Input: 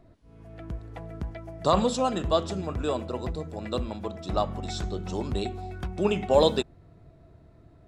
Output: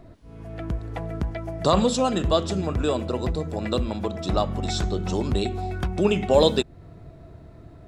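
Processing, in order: dynamic bell 910 Hz, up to -4 dB, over -37 dBFS, Q 0.95; in parallel at -0.5 dB: compression, threshold -34 dBFS, peak gain reduction 16 dB; on the sum: trim +3 dB

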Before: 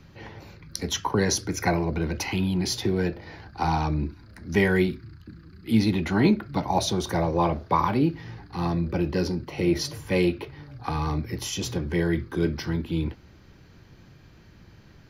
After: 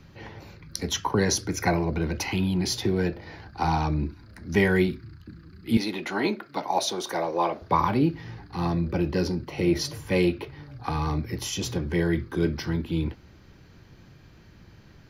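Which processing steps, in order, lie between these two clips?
5.77–7.62 s: high-pass 380 Hz 12 dB/octave

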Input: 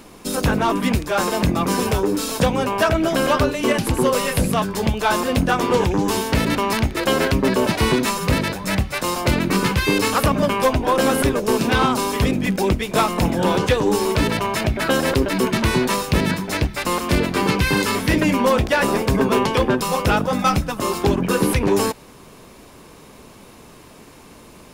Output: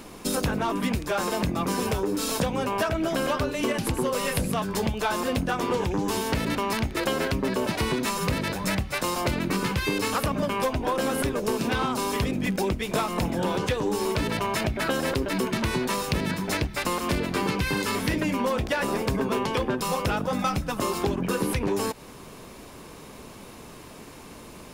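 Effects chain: compression, threshold -23 dBFS, peak gain reduction 10 dB

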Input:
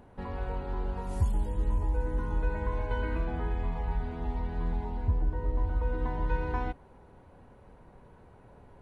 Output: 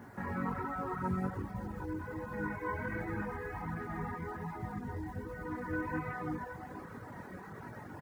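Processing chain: FFT filter 200 Hz 0 dB, 290 Hz +1 dB, 580 Hz -6 dB, 1.9 kHz +8 dB, 3 kHz -12 dB; compression 8:1, threshold -39 dBFS, peak gain reduction 17.5 dB; word length cut 12-bit, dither none; algorithmic reverb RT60 3.1 s, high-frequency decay 0.65×, pre-delay 85 ms, DRR -6 dB; short-mantissa float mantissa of 6-bit; high-pass 90 Hz 24 dB/octave; tempo 1.1×; chorus 1.3 Hz, delay 17.5 ms, depth 4.6 ms; reverb removal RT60 0.87 s; trim +8.5 dB

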